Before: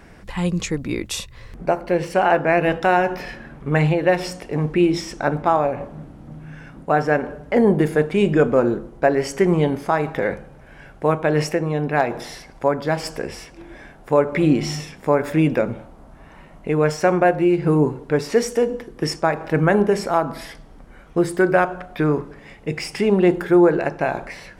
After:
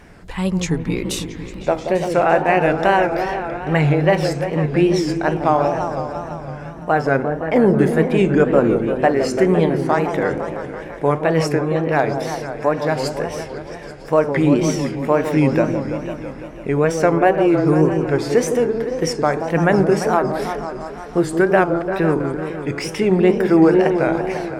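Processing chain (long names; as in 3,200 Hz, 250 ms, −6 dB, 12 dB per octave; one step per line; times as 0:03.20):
echo whose low-pass opens from repeat to repeat 168 ms, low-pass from 750 Hz, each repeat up 1 octave, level −6 dB
tape wow and flutter 130 cents
level +1 dB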